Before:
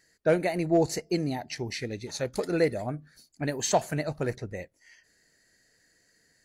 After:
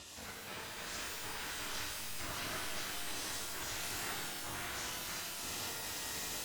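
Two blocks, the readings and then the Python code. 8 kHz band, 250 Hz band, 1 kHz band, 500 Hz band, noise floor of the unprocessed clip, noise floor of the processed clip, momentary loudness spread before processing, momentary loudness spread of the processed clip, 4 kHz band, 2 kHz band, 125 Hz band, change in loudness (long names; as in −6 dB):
−2.0 dB, −20.5 dB, −9.0 dB, −22.0 dB, −68 dBFS, −48 dBFS, 12 LU, 4 LU, +0.5 dB, −3.5 dB, −18.0 dB, −10.5 dB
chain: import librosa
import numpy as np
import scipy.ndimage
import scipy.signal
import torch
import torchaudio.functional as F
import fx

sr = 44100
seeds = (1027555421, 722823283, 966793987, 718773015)

y = np.sign(x) * np.sqrt(np.mean(np.square(x)))
y = fx.high_shelf(y, sr, hz=5200.0, db=-9.5)
y = y + 10.0 ** (-3.5 / 20.0) * np.pad(y, (int(627 * sr / 1000.0), 0))[:len(y)]
y = fx.step_gate(y, sr, bpm=98, pattern='xx.x.xx.xxxx..x', floor_db=-60.0, edge_ms=4.5)
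y = fx.noise_reduce_blind(y, sr, reduce_db=8)
y = y * np.sin(2.0 * np.pi * 360.0 * np.arange(len(y)) / sr)
y = scipy.signal.sosfilt(scipy.signal.butter(4, 66.0, 'highpass', fs=sr, output='sos'), y)
y = 10.0 ** (-32.0 / 20.0) * np.tanh(y / 10.0 ** (-32.0 / 20.0))
y = scipy.signal.sosfilt(scipy.signal.butter(2, 8400.0, 'lowpass', fs=sr, output='sos'), y)
y = fx.spec_gate(y, sr, threshold_db=-15, keep='weak')
y = fx.low_shelf(y, sr, hz=250.0, db=5.0)
y = fx.rev_shimmer(y, sr, seeds[0], rt60_s=1.9, semitones=12, shimmer_db=-2, drr_db=-4.5)
y = F.gain(torch.from_numpy(y), -1.5).numpy()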